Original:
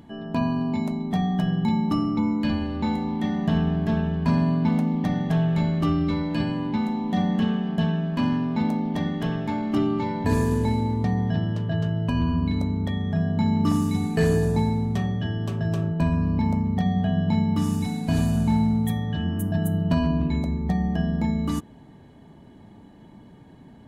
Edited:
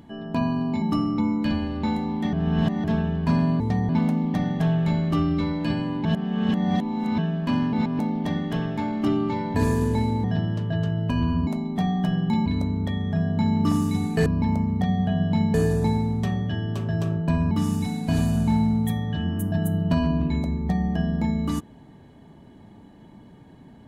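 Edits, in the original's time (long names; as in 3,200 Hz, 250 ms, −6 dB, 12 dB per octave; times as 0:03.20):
0:00.82–0:01.81: move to 0:12.46
0:03.32–0:03.83: reverse
0:06.75–0:07.88: reverse
0:08.43–0:08.69: reverse
0:10.94–0:11.23: move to 0:04.59
0:16.23–0:17.51: move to 0:14.26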